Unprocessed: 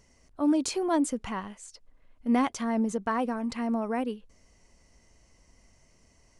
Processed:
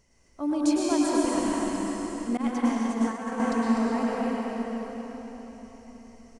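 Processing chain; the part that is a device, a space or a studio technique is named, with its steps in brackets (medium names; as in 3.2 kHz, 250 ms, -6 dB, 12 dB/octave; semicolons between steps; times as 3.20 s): cave (delay 249 ms -8 dB; reverberation RT60 4.5 s, pre-delay 99 ms, DRR -6 dB); 2.37–3.40 s: expander -15 dBFS; trim -4 dB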